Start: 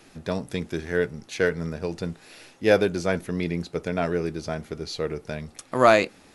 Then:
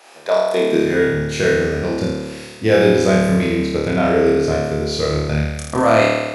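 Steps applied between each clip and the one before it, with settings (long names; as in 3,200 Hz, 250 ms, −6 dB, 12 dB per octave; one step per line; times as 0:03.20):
brickwall limiter −13 dBFS, peak gain reduction 10 dB
high-pass filter sweep 680 Hz → 89 Hz, 0:00.42–0:01.01
on a send: flutter between parallel walls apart 4.6 metres, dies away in 1.3 s
on the sum: level +5 dB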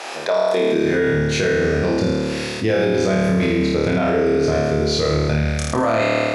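low-pass filter 7,800 Hz 12 dB per octave
brickwall limiter −10.5 dBFS, peak gain reduction 8.5 dB
envelope flattener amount 50%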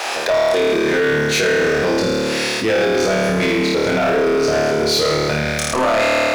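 high-pass filter 500 Hz 6 dB per octave
leveller curve on the samples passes 3
level −2.5 dB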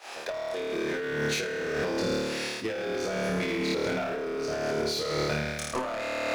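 downward expander −9 dBFS
compressor whose output falls as the input rises −30 dBFS, ratio −1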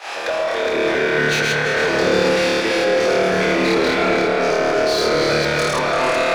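delay that plays each chunk backwards 237 ms, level −1.5 dB
mid-hump overdrive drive 15 dB, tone 3,000 Hz, clips at −17 dBFS
echo whose low-pass opens from repeat to repeat 113 ms, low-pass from 750 Hz, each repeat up 2 octaves, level −3 dB
level +6 dB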